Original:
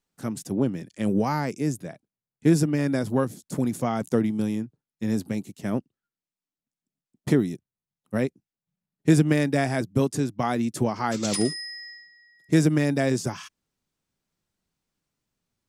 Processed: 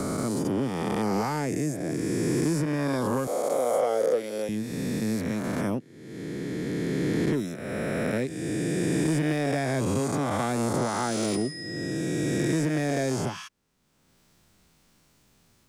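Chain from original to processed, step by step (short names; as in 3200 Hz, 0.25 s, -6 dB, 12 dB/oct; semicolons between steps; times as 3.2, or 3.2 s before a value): spectral swells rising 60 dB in 2.47 s; 5.74–7.32 LPF 5700 Hz -> 3400 Hz 6 dB/oct; soft clip -9.5 dBFS, distortion -21 dB; 3.27–4.49 resonant high-pass 530 Hz, resonance Q 4.9; three-band squash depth 70%; gain -5.5 dB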